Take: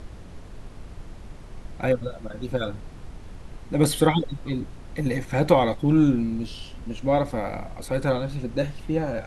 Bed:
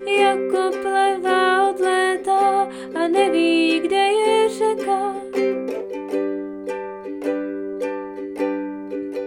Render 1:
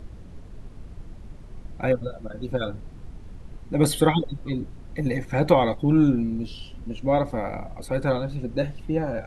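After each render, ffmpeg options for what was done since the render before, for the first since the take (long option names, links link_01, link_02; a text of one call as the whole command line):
ffmpeg -i in.wav -af "afftdn=noise_reduction=7:noise_floor=-42" out.wav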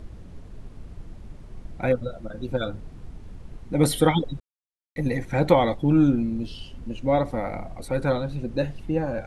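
ffmpeg -i in.wav -filter_complex "[0:a]asplit=3[link_01][link_02][link_03];[link_01]atrim=end=4.4,asetpts=PTS-STARTPTS,afade=type=out:start_time=4.396:duration=0.004:curve=hsin[link_04];[link_02]atrim=start=4.4:end=4.96,asetpts=PTS-STARTPTS,volume=0[link_05];[link_03]atrim=start=4.96,asetpts=PTS-STARTPTS,afade=type=in:duration=0.004:curve=hsin[link_06];[link_04][link_05][link_06]concat=n=3:v=0:a=1" out.wav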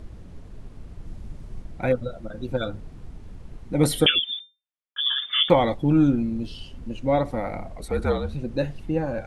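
ffmpeg -i in.wav -filter_complex "[0:a]asettb=1/sr,asplit=3[link_01][link_02][link_03];[link_01]atrim=end=1.054[link_04];[link_02]atrim=start=1.05:end=1.62,asetpts=PTS-STARTPTS,afade=type=in:duration=0.004:curve=qsin,afade=type=out:start_time=0.566:duration=0.004:curve=qsin,bass=frequency=250:gain=4,treble=frequency=4000:gain=3[link_05];[link_03]atrim=start=1.616[link_06];[link_04][link_05]acrossfade=duration=0.004:curve1=hsin:curve2=qsin[link_07];[link_07][link_06]acrossfade=duration=0.004:curve1=qsin:curve2=hsin,asettb=1/sr,asplit=3[link_08][link_09][link_10];[link_08]atrim=end=4.064[link_11];[link_09]atrim=start=4.06:end=5.5,asetpts=PTS-STARTPTS,afade=type=in:duration=0.004:curve=qsin,afade=type=out:start_time=1.436:duration=0.004:curve=qsin,lowpass=frequency=3100:width_type=q:width=0.5098,lowpass=frequency=3100:width_type=q:width=0.6013,lowpass=frequency=3100:width_type=q:width=0.9,lowpass=frequency=3100:width_type=q:width=2.563,afreqshift=-3600[link_12];[link_10]atrim=start=5.496[link_13];[link_11][link_12]acrossfade=duration=0.004:curve1=hsin:curve2=qsin[link_14];[link_14][link_13]acrossfade=duration=0.004:curve1=qsin:curve2=hsin,asettb=1/sr,asplit=3[link_15][link_16][link_17];[link_15]atrim=end=7.704[link_18];[link_16]atrim=start=7.7:end=8.35,asetpts=PTS-STARTPTS,afade=type=in:duration=0.004:curve=qsin,afade=type=out:start_time=0.646:duration=0.004:curve=qsin,afreqshift=-57[link_19];[link_17]atrim=start=8.346[link_20];[link_18][link_19]acrossfade=duration=0.004:curve1=hsin:curve2=qsin[link_21];[link_21][link_20]acrossfade=duration=0.004:curve1=qsin:curve2=hsin" out.wav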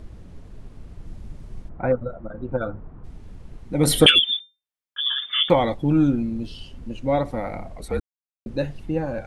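ffmpeg -i in.wav -filter_complex "[0:a]asplit=3[link_01][link_02][link_03];[link_01]afade=type=out:start_time=1.68:duration=0.02[link_04];[link_02]lowpass=frequency=1200:width_type=q:width=1.6,afade=type=in:start_time=1.68:duration=0.02,afade=type=out:start_time=3.03:duration=0.02[link_05];[link_03]afade=type=in:start_time=3.03:duration=0.02[link_06];[link_04][link_05][link_06]amix=inputs=3:normalize=0,asettb=1/sr,asplit=3[link_07][link_08][link_09];[link_07]atrim=end=3.874[link_10];[link_08]atrim=start=3.87:end=4.37,asetpts=PTS-STARTPTS,afade=type=in:duration=0.004:curve=qsin,afade=type=out:start_time=0.496:duration=0.004:curve=qsin,acontrast=71[link_11];[link_09]atrim=start=4.366[link_12];[link_10][link_11]acrossfade=duration=0.004:curve1=hsin:curve2=qsin[link_13];[link_13][link_12]acrossfade=duration=0.004:curve1=qsin:curve2=hsin,asplit=3[link_14][link_15][link_16];[link_14]atrim=end=8,asetpts=PTS-STARTPTS,afade=type=out:start_time=7.996:duration=0.004:curve=hsin[link_17];[link_15]atrim=start=8:end=8.46,asetpts=PTS-STARTPTS,volume=0[link_18];[link_16]atrim=start=8.46,asetpts=PTS-STARTPTS,afade=type=in:duration=0.004:curve=hsin[link_19];[link_17][link_18][link_19]concat=n=3:v=0:a=1" out.wav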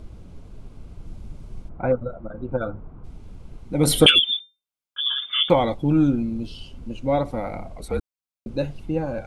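ffmpeg -i in.wav -af "bandreject=frequency=1800:width=5.3" out.wav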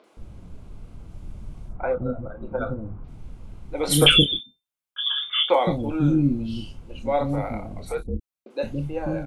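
ffmpeg -i in.wav -filter_complex "[0:a]asplit=2[link_01][link_02];[link_02]adelay=28,volume=-9dB[link_03];[link_01][link_03]amix=inputs=2:normalize=0,acrossover=split=370|4800[link_04][link_05][link_06];[link_06]adelay=40[link_07];[link_04]adelay=170[link_08];[link_08][link_05][link_07]amix=inputs=3:normalize=0" out.wav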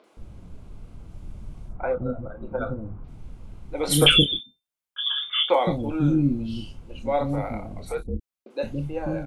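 ffmpeg -i in.wav -af "volume=-1dB" out.wav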